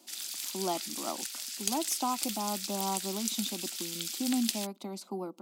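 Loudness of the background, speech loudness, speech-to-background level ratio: -35.0 LUFS, -36.0 LUFS, -1.0 dB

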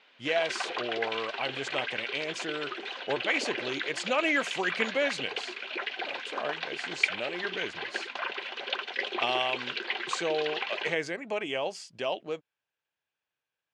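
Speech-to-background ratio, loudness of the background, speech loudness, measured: 1.5 dB, -34.0 LUFS, -32.5 LUFS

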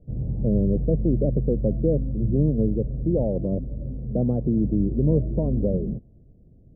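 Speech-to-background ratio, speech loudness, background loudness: 4.5 dB, -25.0 LUFS, -29.5 LUFS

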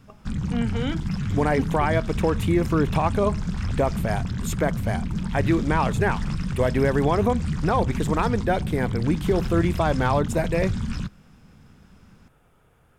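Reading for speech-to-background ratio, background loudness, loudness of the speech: 3.5 dB, -28.5 LUFS, -25.0 LUFS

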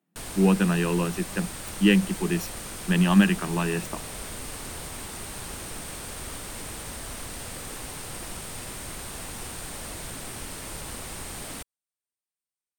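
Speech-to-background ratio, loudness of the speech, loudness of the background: 12.0 dB, -24.0 LUFS, -36.0 LUFS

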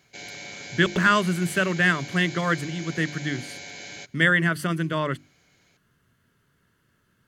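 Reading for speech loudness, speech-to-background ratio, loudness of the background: -23.5 LUFS, 14.5 dB, -38.0 LUFS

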